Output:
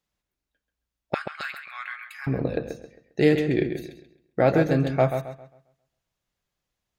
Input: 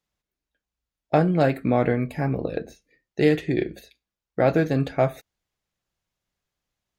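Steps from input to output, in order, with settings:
0:01.14–0:02.27: elliptic high-pass filter 1,200 Hz, stop band 60 dB
feedback echo with a low-pass in the loop 134 ms, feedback 33%, low-pass 3,700 Hz, level −7.5 dB

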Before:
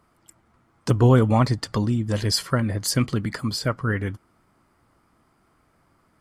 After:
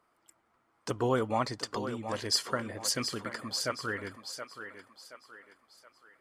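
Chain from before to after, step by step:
bass and treble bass −15 dB, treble −3 dB
feedback echo with a high-pass in the loop 724 ms, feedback 43%, high-pass 350 Hz, level −8 dB
dynamic equaliser 6,300 Hz, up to +6 dB, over −44 dBFS, Q 1.2
level −6.5 dB

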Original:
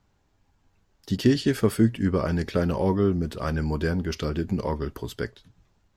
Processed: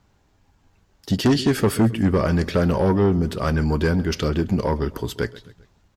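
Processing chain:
repeating echo 132 ms, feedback 46%, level −20.5 dB
harmonic generator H 5 −13 dB, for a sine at −8 dBFS

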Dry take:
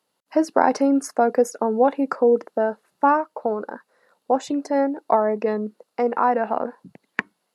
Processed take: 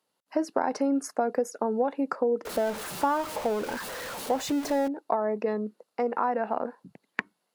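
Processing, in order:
0:02.45–0:04.88: converter with a step at zero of −26.5 dBFS
downward compressor, threshold −17 dBFS, peak gain reduction 6.5 dB
level −4.5 dB

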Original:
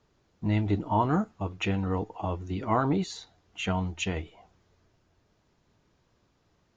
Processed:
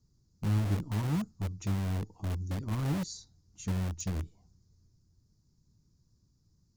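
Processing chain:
drawn EQ curve 150 Hz 0 dB, 290 Hz −10 dB, 660 Hz −26 dB, 980 Hz −21 dB, 3,000 Hz −29 dB, 4,800 Hz −3 dB
in parallel at −7 dB: wrap-around overflow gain 31 dB

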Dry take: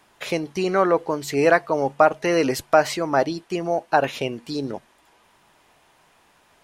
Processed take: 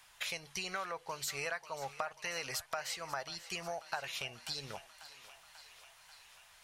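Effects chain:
guitar amp tone stack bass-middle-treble 10-0-10
downward compressor 6 to 1, threshold −39 dBFS, peak gain reduction 17 dB
on a send: feedback echo with a high-pass in the loop 540 ms, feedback 73%, high-pass 550 Hz, level −15.5 dB
on the sum: level +2.5 dB

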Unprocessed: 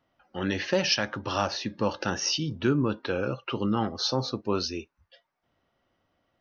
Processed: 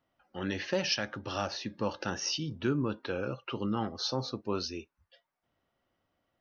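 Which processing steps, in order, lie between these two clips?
0:00.98–0:01.51: parametric band 1,000 Hz −7.5 dB 0.26 octaves
level −5.5 dB

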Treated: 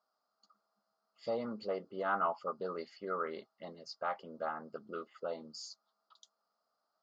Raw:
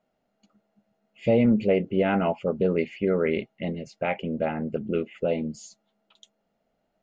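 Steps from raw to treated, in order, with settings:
pair of resonant band-passes 2,400 Hz, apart 2 octaves
level +8 dB

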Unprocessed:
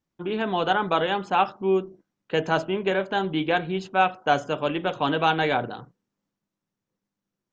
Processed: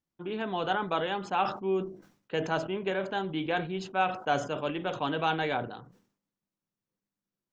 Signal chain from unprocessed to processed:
level that may fall only so fast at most 110 dB per second
level −7 dB

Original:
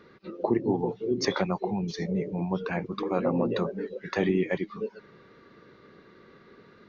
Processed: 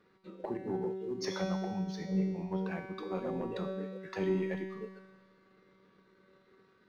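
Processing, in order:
leveller curve on the samples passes 1
tuned comb filter 190 Hz, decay 1.5 s, mix 90%
every ending faded ahead of time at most 240 dB per second
level +4 dB

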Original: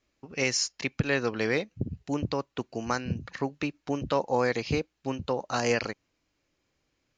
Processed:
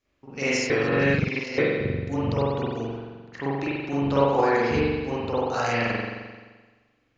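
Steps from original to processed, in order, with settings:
0:02.83–0:03.33: gate with flip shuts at −28 dBFS, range −28 dB
spring reverb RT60 1.4 s, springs 43 ms, chirp 55 ms, DRR −9.5 dB
0:00.70–0:01.58: reverse
0:04.15–0:04.76: transient designer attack +6 dB, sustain 0 dB
level −4.5 dB

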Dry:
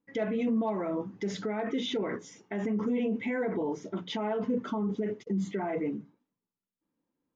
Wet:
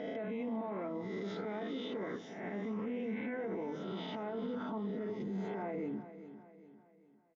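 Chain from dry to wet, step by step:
peak hold with a rise ahead of every peak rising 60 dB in 0.91 s
low-shelf EQ 74 Hz −10 dB
brickwall limiter −28.5 dBFS, peak gain reduction 10.5 dB
high-frequency loss of the air 230 metres
on a send: repeating echo 401 ms, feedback 44%, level −13 dB
on the sum: level −3 dB

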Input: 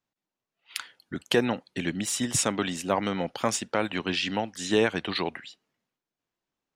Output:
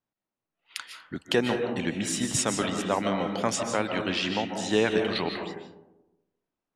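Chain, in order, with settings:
low-pass filter 11,000 Hz 12 dB per octave
comb and all-pass reverb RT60 1 s, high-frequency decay 0.3×, pre-delay 110 ms, DRR 4 dB
one half of a high-frequency compander decoder only
level −1 dB

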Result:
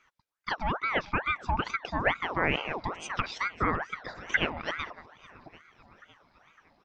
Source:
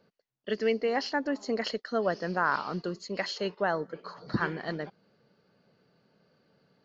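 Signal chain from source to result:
treble cut that deepens with the level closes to 1,700 Hz, closed at −27 dBFS
0:01.05–0:01.70: octave-band graphic EQ 250/500/1,000/2,000/4,000 Hz −6/+9/−7/+5/−8 dB
on a send: repeating echo 559 ms, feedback 57%, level −19.5 dB
on the sum: harmonic and percussive parts rebalanced percussive +6 dB
ring modulator whose carrier an LFO sweeps 1,100 Hz, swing 65%, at 2.3 Hz

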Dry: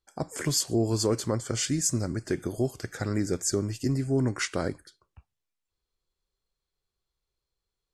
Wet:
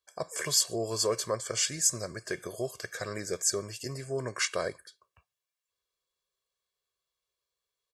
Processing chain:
high-pass filter 630 Hz 6 dB per octave
comb filter 1.8 ms, depth 71%

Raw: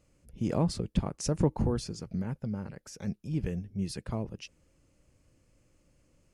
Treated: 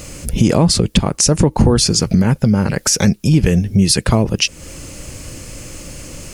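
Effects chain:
high-shelf EQ 2,500 Hz +9.5 dB
downward compressor 3 to 1, threshold −47 dBFS, peak gain reduction 19.5 dB
boost into a limiter +34 dB
level −1 dB

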